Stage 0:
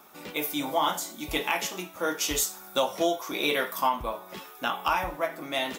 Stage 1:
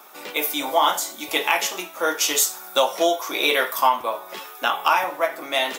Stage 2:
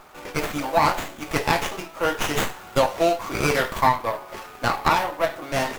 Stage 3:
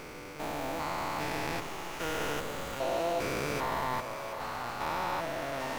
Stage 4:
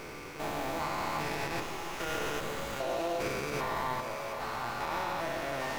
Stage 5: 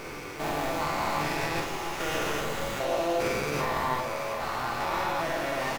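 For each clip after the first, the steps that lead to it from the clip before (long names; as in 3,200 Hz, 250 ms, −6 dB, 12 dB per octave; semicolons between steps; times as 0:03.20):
high-pass filter 420 Hz 12 dB per octave; level +7.5 dB
windowed peak hold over 9 samples
spectrum averaged block by block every 400 ms; echo with a time of its own for lows and highs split 750 Hz, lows 149 ms, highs 726 ms, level −9.5 dB; level −7 dB
brickwall limiter −25 dBFS, peak gain reduction 7.5 dB; on a send at −5 dB: convolution reverb RT60 0.65 s, pre-delay 3 ms
double-tracking delay 47 ms −4 dB; level +3.5 dB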